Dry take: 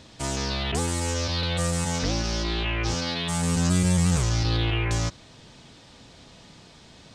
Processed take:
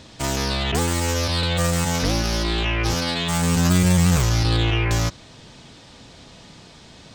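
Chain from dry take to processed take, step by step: tracing distortion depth 0.039 ms; gain +4.5 dB

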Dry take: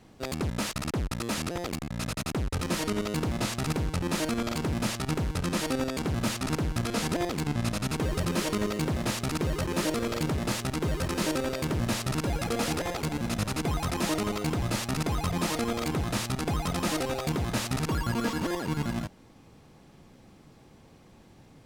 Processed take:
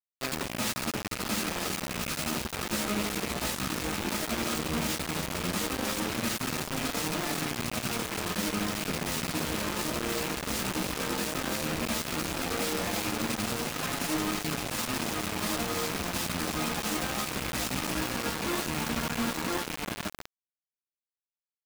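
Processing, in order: rattling part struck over -28 dBFS, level -26 dBFS; in parallel at -11.5 dB: soft clip -30.5 dBFS, distortion -9 dB; on the sum: echo 1.017 s -5.5 dB; reverb RT60 1.8 s, pre-delay 7 ms, DRR 5 dB; reverse; compressor 6:1, threshold -32 dBFS, peak gain reduction 12.5 dB; reverse; dynamic EQ 220 Hz, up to +7 dB, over -50 dBFS, Q 1.6; flange 0.14 Hz, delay 6.4 ms, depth 9.8 ms, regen +11%; low shelf 320 Hz -11 dB; companded quantiser 2-bit

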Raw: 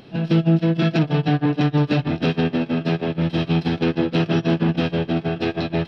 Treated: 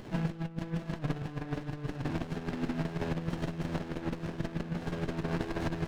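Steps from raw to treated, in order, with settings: bell 1700 Hz +11.5 dB 1.5 oct; negative-ratio compressor -24 dBFS, ratio -0.5; running maximum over 33 samples; gain -8 dB

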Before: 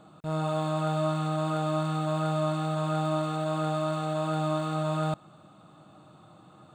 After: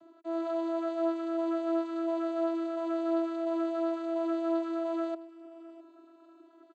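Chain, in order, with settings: reverb removal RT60 0.54 s; vocoder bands 16, saw 331 Hz; feedback echo 0.659 s, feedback 35%, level -18 dB

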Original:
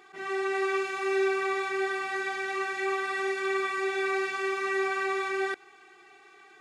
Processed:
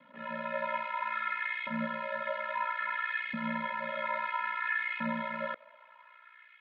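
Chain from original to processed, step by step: ring modulator 30 Hz; mistuned SSB -190 Hz 340–3600 Hz; LFO high-pass saw up 0.6 Hz 220–2500 Hz; gain -2 dB

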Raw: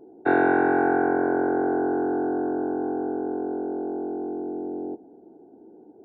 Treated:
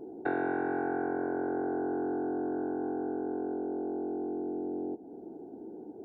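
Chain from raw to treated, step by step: low shelf 360 Hz +4 dB; compressor 2.5:1, threshold -39 dBFS, peak gain reduction 16 dB; 2.52–3.54 bell 2400 Hz +9 dB 0.88 oct; gain +2.5 dB

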